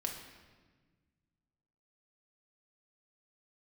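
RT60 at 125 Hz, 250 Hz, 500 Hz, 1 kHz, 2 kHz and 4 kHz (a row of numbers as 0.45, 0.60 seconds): 2.5, 2.2, 1.5, 1.3, 1.3, 1.1 seconds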